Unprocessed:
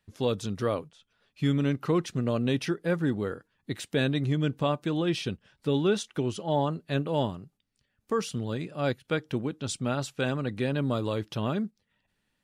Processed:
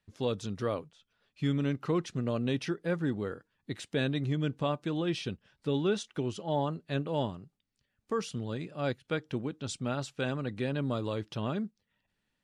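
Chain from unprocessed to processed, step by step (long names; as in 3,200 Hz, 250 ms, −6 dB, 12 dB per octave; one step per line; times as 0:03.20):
low-pass filter 8,800 Hz 12 dB per octave
level −4 dB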